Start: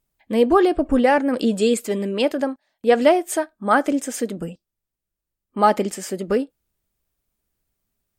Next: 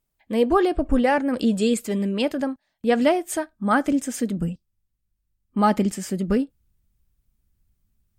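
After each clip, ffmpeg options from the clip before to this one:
-af "asubboost=boost=6:cutoff=190,volume=-2.5dB"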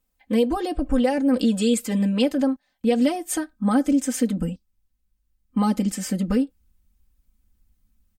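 -filter_complex "[0:a]acrossover=split=600|3700[a][b][c];[a]alimiter=limit=-18dB:level=0:latency=1:release=287[d];[b]acompressor=threshold=-34dB:ratio=6[e];[d][e][c]amix=inputs=3:normalize=0,aecho=1:1:3.9:1"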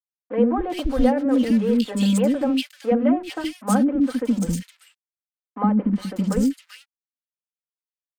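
-filter_complex "[0:a]asplit=2[a][b];[b]adynamicsmooth=sensitivity=7.5:basefreq=690,volume=0dB[c];[a][c]amix=inputs=2:normalize=0,aeval=exprs='sgn(val(0))*max(abs(val(0))-0.015,0)':c=same,acrossover=split=360|2000[d][e][f];[d]adelay=70[g];[f]adelay=390[h];[g][e][h]amix=inputs=3:normalize=0,volume=-2.5dB"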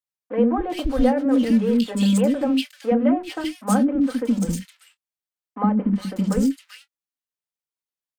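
-filter_complex "[0:a]asplit=2[a][b];[b]adelay=26,volume=-13.5dB[c];[a][c]amix=inputs=2:normalize=0"

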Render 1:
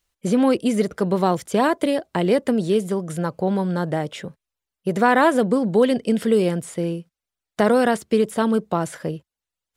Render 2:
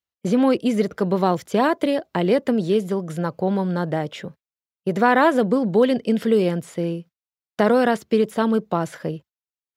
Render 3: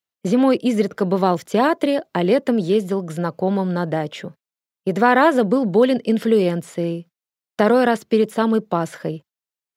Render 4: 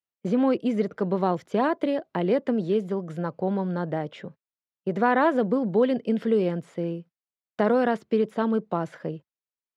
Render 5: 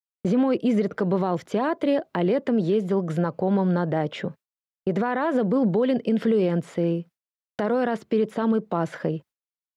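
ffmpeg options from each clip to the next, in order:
-af "agate=range=-15dB:threshold=-44dB:ratio=16:detection=peak,highpass=78,equalizer=f=9k:t=o:w=0.59:g=-10.5"
-af "highpass=120,volume=2dB"
-af "aemphasis=mode=reproduction:type=75fm,volume=-7dB"
-filter_complex "[0:a]agate=range=-33dB:threshold=-48dB:ratio=3:detection=peak,asplit=2[a][b];[b]acompressor=threshold=-32dB:ratio=6,volume=0dB[c];[a][c]amix=inputs=2:normalize=0,alimiter=limit=-17.5dB:level=0:latency=1:release=67,volume=3.5dB"

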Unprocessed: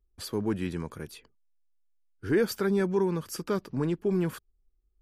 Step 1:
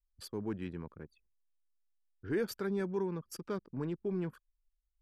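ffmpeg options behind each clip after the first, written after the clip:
-af "anlmdn=0.631,volume=-8.5dB"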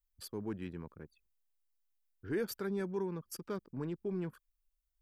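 -af "highshelf=f=11k:g=10.5,volume=-2dB"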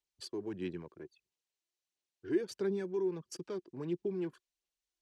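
-filter_complex "[0:a]acrossover=split=360[a][b];[b]acompressor=threshold=-42dB:ratio=6[c];[a][c]amix=inputs=2:normalize=0,highpass=150,equalizer=f=220:t=q:w=4:g=-5,equalizer=f=360:t=q:w=4:g=6,equalizer=f=1.3k:t=q:w=4:g=-7,equalizer=f=2.9k:t=q:w=4:g=4,equalizer=f=4.1k:t=q:w=4:g=4,equalizer=f=6k:t=q:w=4:g=4,lowpass=f=8.8k:w=0.5412,lowpass=f=8.8k:w=1.3066,aphaser=in_gain=1:out_gain=1:delay=3:decay=0.4:speed=1.5:type=sinusoidal"

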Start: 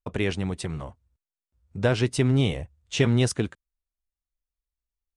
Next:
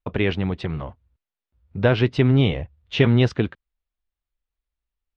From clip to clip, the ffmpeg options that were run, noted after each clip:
-af "lowpass=f=3.8k:w=0.5412,lowpass=f=3.8k:w=1.3066,volume=4.5dB"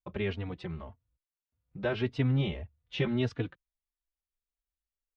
-filter_complex "[0:a]asplit=2[a][b];[b]adelay=3.5,afreqshift=1.7[c];[a][c]amix=inputs=2:normalize=1,volume=-8.5dB"

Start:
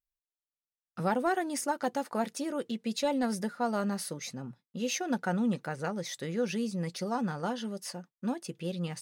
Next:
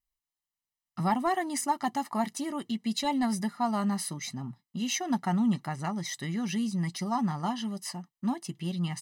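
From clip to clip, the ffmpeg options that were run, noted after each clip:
-af "aecho=1:1:1:0.93"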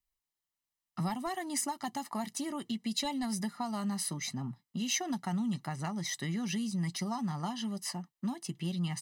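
-filter_complex "[0:a]acrossover=split=140|3000[a][b][c];[b]acompressor=threshold=-34dB:ratio=6[d];[a][d][c]amix=inputs=3:normalize=0"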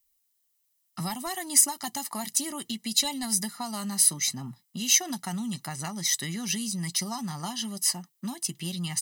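-af "crystalizer=i=4.5:c=0"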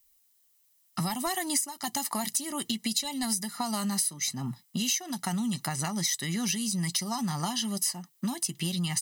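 -af "acompressor=threshold=-33dB:ratio=8,volume=6.5dB"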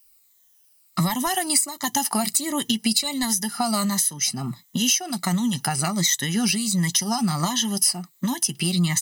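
-af "afftfilt=real='re*pow(10,9/40*sin(2*PI*(1.1*log(max(b,1)*sr/1024/100)/log(2)-(-1.4)*(pts-256)/sr)))':imag='im*pow(10,9/40*sin(2*PI*(1.1*log(max(b,1)*sr/1024/100)/log(2)-(-1.4)*(pts-256)/sr)))':win_size=1024:overlap=0.75,volume=6.5dB"

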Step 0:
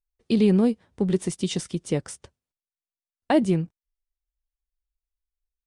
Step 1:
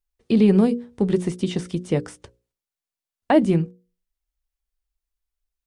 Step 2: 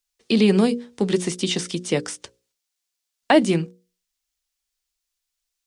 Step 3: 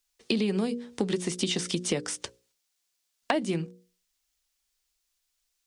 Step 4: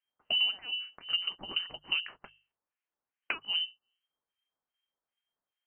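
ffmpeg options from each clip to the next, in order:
-filter_complex "[0:a]bandreject=f=60:t=h:w=6,bandreject=f=120:t=h:w=6,bandreject=f=180:t=h:w=6,bandreject=f=240:t=h:w=6,bandreject=f=300:t=h:w=6,bandreject=f=360:t=h:w=6,bandreject=f=420:t=h:w=6,bandreject=f=480:t=h:w=6,bandreject=f=540:t=h:w=6,acrossover=split=2800[a][b];[b]acompressor=threshold=-45dB:ratio=4:attack=1:release=60[c];[a][c]amix=inputs=2:normalize=0,volume=4dB"
-filter_complex "[0:a]acrossover=split=160 7400:gain=0.251 1 0.178[a][b][c];[a][b][c]amix=inputs=3:normalize=0,crystalizer=i=6.5:c=0"
-af "acompressor=threshold=-28dB:ratio=6,volume=3dB"
-filter_complex "[0:a]acrossover=split=1700[a][b];[a]aeval=exprs='val(0)*(1-1/2+1/2*cos(2*PI*2.5*n/s))':c=same[c];[b]aeval=exprs='val(0)*(1-1/2-1/2*cos(2*PI*2.5*n/s))':c=same[d];[c][d]amix=inputs=2:normalize=0,lowpass=f=2.7k:t=q:w=0.5098,lowpass=f=2.7k:t=q:w=0.6013,lowpass=f=2.7k:t=q:w=0.9,lowpass=f=2.7k:t=q:w=2.563,afreqshift=-3200,bandreject=f=50:t=h:w=6,bandreject=f=100:t=h:w=6,bandreject=f=150:t=h:w=6"

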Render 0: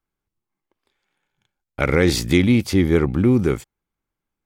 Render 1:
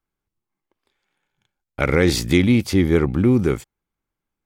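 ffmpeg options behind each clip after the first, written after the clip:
-af anull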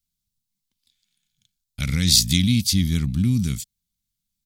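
-af "firequalizer=gain_entry='entry(210,0);entry(370,-27);entry(3800,10)':delay=0.05:min_phase=1"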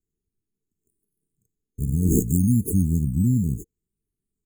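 -af "acrusher=samples=9:mix=1:aa=0.000001:lfo=1:lforange=5.4:lforate=0.67,afftfilt=real='re*(1-between(b*sr/4096,460,6400))':imag='im*(1-between(b*sr/4096,460,6400))':win_size=4096:overlap=0.75"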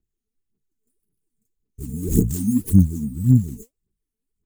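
-af "aphaser=in_gain=1:out_gain=1:delay=4.6:decay=0.79:speed=1.8:type=sinusoidal,volume=-5dB"

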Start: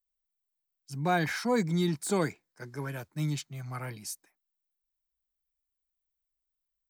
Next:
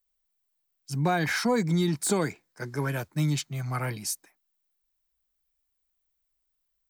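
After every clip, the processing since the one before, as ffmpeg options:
-af "acompressor=threshold=-29dB:ratio=5,volume=7.5dB"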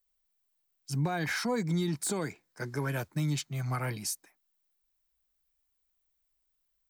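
-af "alimiter=limit=-22.5dB:level=0:latency=1:release=361"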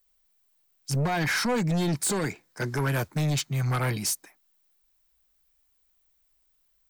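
-af "aeval=exprs='0.0794*sin(PI/2*1.78*val(0)/0.0794)':c=same"

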